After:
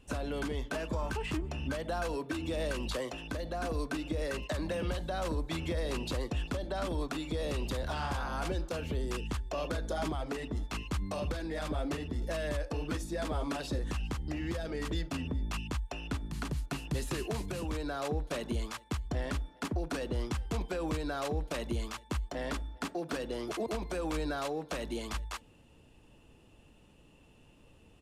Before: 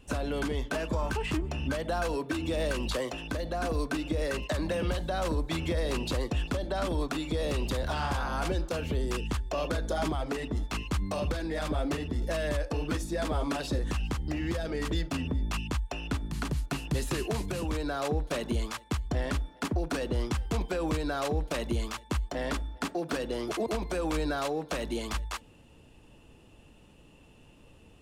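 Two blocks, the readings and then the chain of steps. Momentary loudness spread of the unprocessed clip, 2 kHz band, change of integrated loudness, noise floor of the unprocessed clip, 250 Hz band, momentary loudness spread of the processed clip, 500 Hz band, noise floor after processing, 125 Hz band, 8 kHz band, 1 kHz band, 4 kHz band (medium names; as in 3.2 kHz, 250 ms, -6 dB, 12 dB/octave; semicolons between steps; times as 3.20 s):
3 LU, -4.0 dB, -4.0 dB, -56 dBFS, -4.0 dB, 3 LU, -4.0 dB, -60 dBFS, -4.0 dB, -4.0 dB, -4.0 dB, -4.0 dB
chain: resampled via 32 kHz; trim -4 dB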